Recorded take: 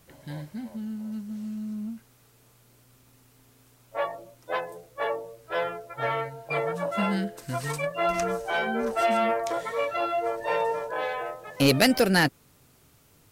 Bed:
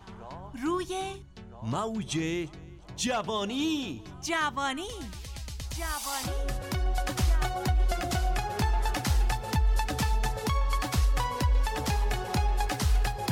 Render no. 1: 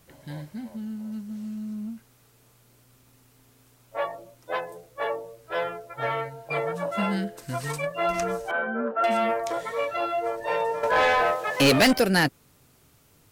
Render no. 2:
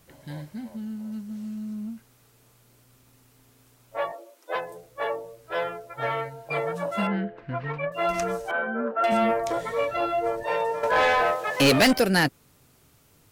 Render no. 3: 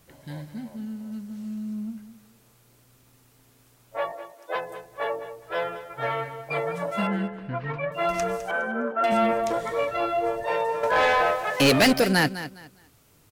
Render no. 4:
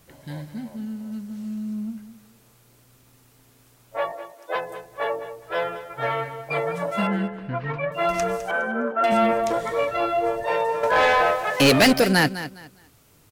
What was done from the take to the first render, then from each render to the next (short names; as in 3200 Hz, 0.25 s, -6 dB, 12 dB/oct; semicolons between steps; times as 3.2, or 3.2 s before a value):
8.51–9.04 speaker cabinet 260–2100 Hz, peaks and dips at 260 Hz +9 dB, 390 Hz -9 dB, 550 Hz +5 dB, 800 Hz -8 dB, 1400 Hz +6 dB, 2100 Hz -10 dB; 10.83–11.93 overdrive pedal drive 22 dB, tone 4800 Hz, clips at -11.5 dBFS
4.12–4.55 steep high-pass 300 Hz 48 dB/oct; 7.07–7.92 LPF 2600 Hz 24 dB/oct; 9.12–10.43 low shelf 290 Hz +9.5 dB
feedback echo 0.206 s, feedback 24%, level -13 dB
gain +2.5 dB